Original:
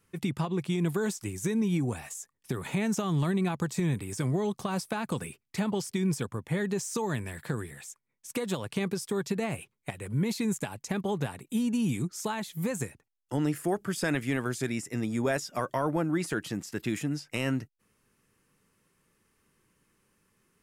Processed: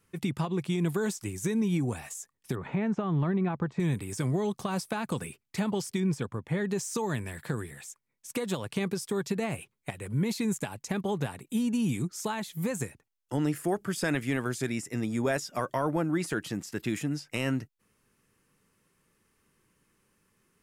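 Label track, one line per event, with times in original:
2.550000	3.800000	LPF 1800 Hz
6.000000	6.710000	LPF 3500 Hz 6 dB/oct

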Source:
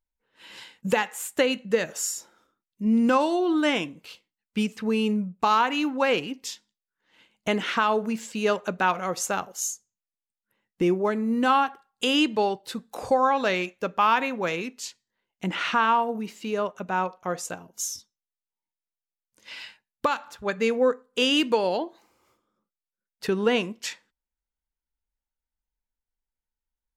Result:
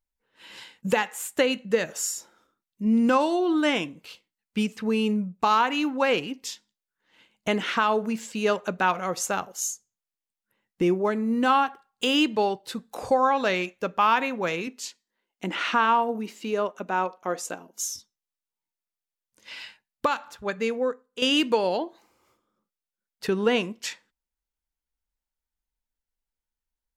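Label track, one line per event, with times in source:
11.230000	12.670000	median filter over 3 samples
14.670000	17.920000	resonant low shelf 180 Hz -10 dB, Q 1.5
20.250000	21.220000	fade out, to -10 dB

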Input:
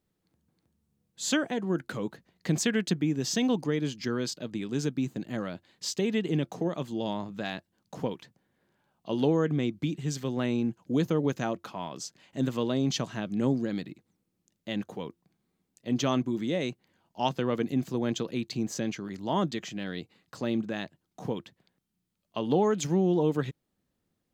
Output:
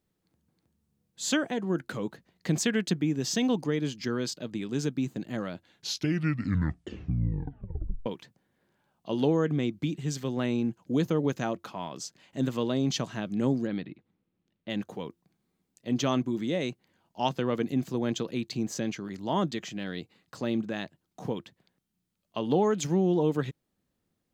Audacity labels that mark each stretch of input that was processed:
5.540000	5.540000	tape stop 2.52 s
13.670000	14.700000	LPF 3600 Hz 24 dB/oct

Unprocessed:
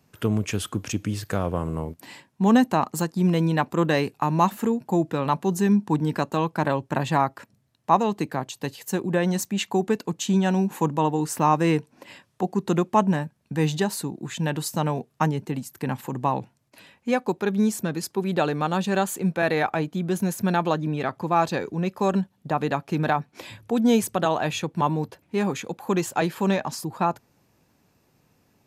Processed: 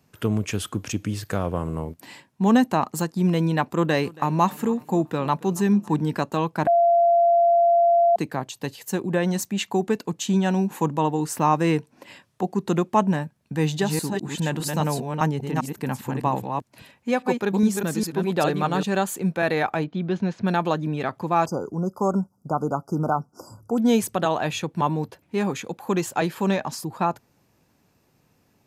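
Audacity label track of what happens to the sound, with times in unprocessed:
3.720000	6.020000	feedback echo 0.277 s, feedback 42%, level -21.5 dB
6.670000	8.160000	bleep 686 Hz -14 dBFS
13.590000	18.830000	reverse delay 0.202 s, level -4 dB
19.840000	20.470000	LPF 4300 Hz 24 dB/oct
21.460000	23.780000	brick-wall FIR band-stop 1500–4700 Hz

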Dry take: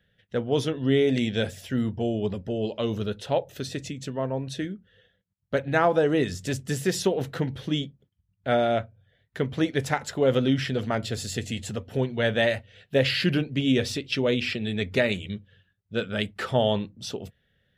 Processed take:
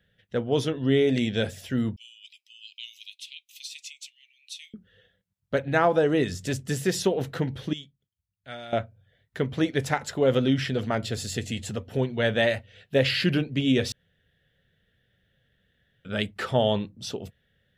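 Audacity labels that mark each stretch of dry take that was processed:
1.960000	4.740000	steep high-pass 2200 Hz 96 dB/oct
7.730000	8.730000	passive tone stack bass-middle-treble 5-5-5
13.920000	16.050000	room tone

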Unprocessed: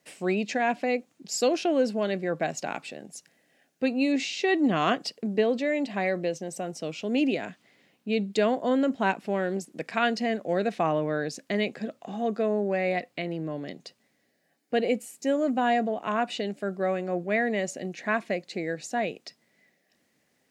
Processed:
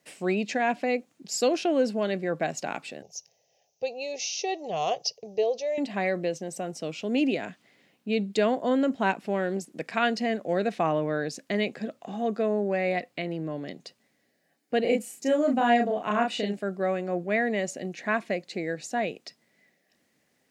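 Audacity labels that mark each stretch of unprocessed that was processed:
3.020000	5.780000	EQ curve 120 Hz 0 dB, 270 Hz -26 dB, 430 Hz -1 dB, 800 Hz +1 dB, 1500 Hz -23 dB, 2600 Hz -5 dB, 4100 Hz -3 dB, 6100 Hz +12 dB, 8700 Hz -28 dB, 14000 Hz -1 dB
14.810000	16.590000	doubler 34 ms -3 dB

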